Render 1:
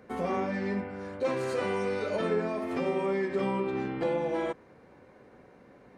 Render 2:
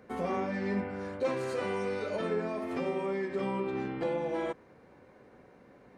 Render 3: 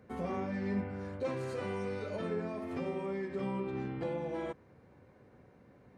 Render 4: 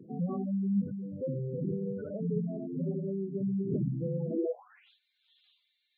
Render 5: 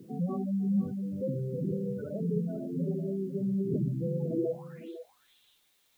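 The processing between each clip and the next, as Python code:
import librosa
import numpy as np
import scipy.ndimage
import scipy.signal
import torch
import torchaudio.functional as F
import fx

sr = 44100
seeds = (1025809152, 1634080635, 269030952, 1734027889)

y1 = fx.rider(x, sr, range_db=10, speed_s=0.5)
y1 = y1 * librosa.db_to_amplitude(-2.5)
y2 = fx.peak_eq(y1, sr, hz=97.0, db=11.0, octaves=1.8)
y2 = y2 * librosa.db_to_amplitude(-6.0)
y3 = fx.dmg_wind(y2, sr, seeds[0], corner_hz=450.0, level_db=-46.0)
y3 = fx.filter_sweep_highpass(y3, sr, from_hz=150.0, to_hz=3600.0, start_s=4.25, end_s=4.9, q=4.4)
y3 = fx.spec_gate(y3, sr, threshold_db=-10, keep='strong')
y4 = fx.quant_dither(y3, sr, seeds[1], bits=12, dither='triangular')
y4 = y4 + 10.0 ** (-13.0 / 20.0) * np.pad(y4, (int(503 * sr / 1000.0), 0))[:len(y4)]
y4 = y4 * librosa.db_to_amplitude(1.0)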